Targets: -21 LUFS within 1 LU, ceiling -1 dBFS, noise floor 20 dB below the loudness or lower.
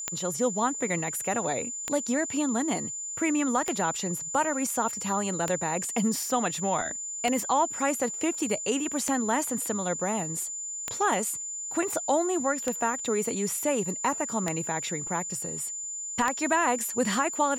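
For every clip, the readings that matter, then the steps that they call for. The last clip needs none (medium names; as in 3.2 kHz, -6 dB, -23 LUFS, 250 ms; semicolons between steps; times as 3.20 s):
clicks found 10; steady tone 7.1 kHz; tone level -33 dBFS; loudness -28.0 LUFS; peak level -9.0 dBFS; loudness target -21.0 LUFS
-> de-click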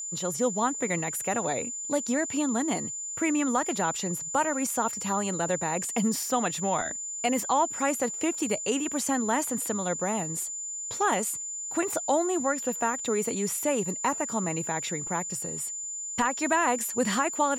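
clicks found 0; steady tone 7.1 kHz; tone level -33 dBFS
-> band-stop 7.1 kHz, Q 30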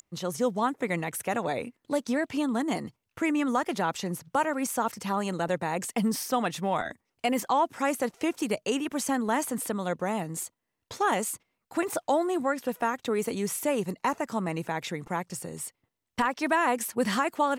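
steady tone not found; loudness -29.5 LUFS; peak level -14.0 dBFS; loudness target -21.0 LUFS
-> trim +8.5 dB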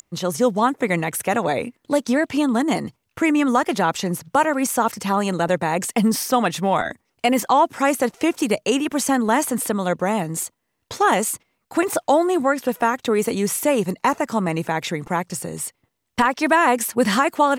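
loudness -21.0 LUFS; peak level -5.5 dBFS; noise floor -74 dBFS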